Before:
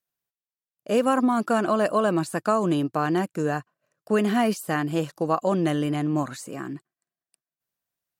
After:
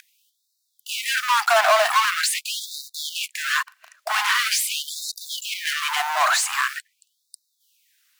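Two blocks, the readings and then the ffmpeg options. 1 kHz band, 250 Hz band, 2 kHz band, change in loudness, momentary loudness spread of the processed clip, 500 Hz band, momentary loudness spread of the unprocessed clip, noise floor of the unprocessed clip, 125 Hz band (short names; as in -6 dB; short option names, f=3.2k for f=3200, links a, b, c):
+4.5 dB, under -40 dB, +11.5 dB, +2.5 dB, 13 LU, -4.0 dB, 11 LU, under -85 dBFS, under -40 dB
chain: -filter_complex "[0:a]aeval=exprs='val(0)+0.00891*(sin(2*PI*50*n/s)+sin(2*PI*2*50*n/s)/2+sin(2*PI*3*50*n/s)/3+sin(2*PI*4*50*n/s)/4+sin(2*PI*5*50*n/s)/5)':c=same,asplit=2[a][b];[b]highpass=f=720:p=1,volume=36dB,asoftclip=type=tanh:threshold=-8.5dB[c];[a][c]amix=inputs=2:normalize=0,lowpass=f=4.2k:p=1,volume=-6dB,acrossover=split=280|1300[d][e][f];[e]acrusher=bits=5:mix=0:aa=0.000001[g];[d][g][f]amix=inputs=3:normalize=0,afftfilt=real='re*gte(b*sr/1024,600*pow(3700/600,0.5+0.5*sin(2*PI*0.44*pts/sr)))':imag='im*gte(b*sr/1024,600*pow(3700/600,0.5+0.5*sin(2*PI*0.44*pts/sr)))':win_size=1024:overlap=0.75"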